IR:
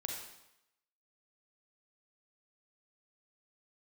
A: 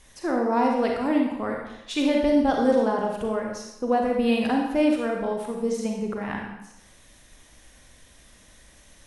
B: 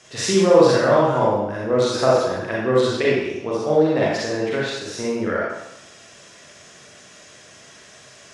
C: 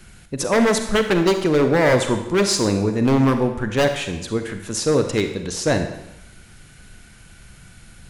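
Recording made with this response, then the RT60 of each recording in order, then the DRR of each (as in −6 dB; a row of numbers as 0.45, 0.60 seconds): A; 0.85, 0.85, 0.85 seconds; 0.5, −6.5, 6.5 decibels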